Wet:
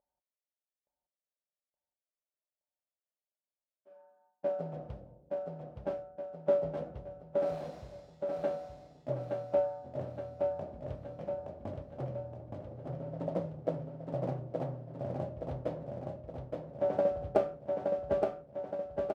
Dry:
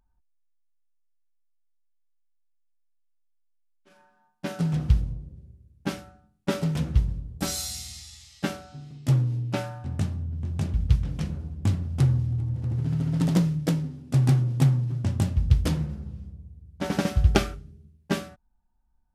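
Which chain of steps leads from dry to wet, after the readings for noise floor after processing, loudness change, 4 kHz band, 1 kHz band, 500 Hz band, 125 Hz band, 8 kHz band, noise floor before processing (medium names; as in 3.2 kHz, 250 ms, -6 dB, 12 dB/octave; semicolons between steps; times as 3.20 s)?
under -85 dBFS, -10.0 dB, under -20 dB, -3.0 dB, +5.0 dB, -19.0 dB, under -30 dB, -68 dBFS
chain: tracing distortion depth 0.45 ms; band-pass filter 590 Hz, Q 6.2; doubling 31 ms -14 dB; feedback delay 870 ms, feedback 55%, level -3.5 dB; trim +7 dB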